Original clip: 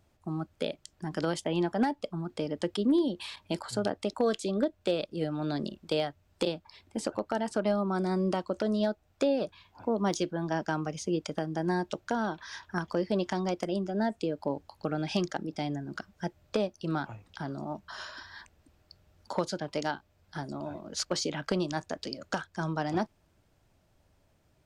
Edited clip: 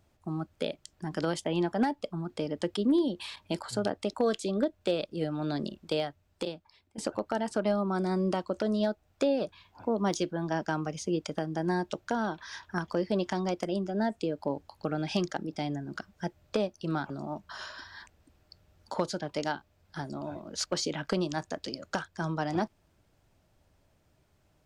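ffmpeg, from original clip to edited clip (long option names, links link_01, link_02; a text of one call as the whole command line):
ffmpeg -i in.wav -filter_complex "[0:a]asplit=3[link_01][link_02][link_03];[link_01]atrim=end=6.98,asetpts=PTS-STARTPTS,afade=type=out:start_time=5.82:duration=1.16:silence=0.211349[link_04];[link_02]atrim=start=6.98:end=17.102,asetpts=PTS-STARTPTS,afade=type=in:duration=0.004:curve=hsin:silence=0.211349[link_05];[link_03]atrim=start=17.488[link_06];[link_04][link_05]concat=n=2:v=0:a=1[link_07];[link_07][link_06]acrossfade=duration=0.004:curve1=hsin:curve2=hsin" out.wav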